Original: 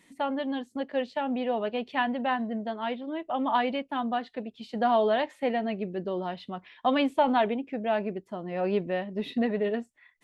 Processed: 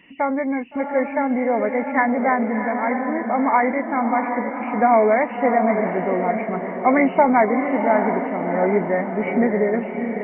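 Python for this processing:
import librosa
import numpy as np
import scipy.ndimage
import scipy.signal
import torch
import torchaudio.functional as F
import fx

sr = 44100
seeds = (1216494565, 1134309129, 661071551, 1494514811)

y = fx.freq_compress(x, sr, knee_hz=1900.0, ratio=4.0)
y = fx.echo_diffused(y, sr, ms=698, feedback_pct=51, wet_db=-6.0)
y = F.gain(torch.from_numpy(y), 8.0).numpy()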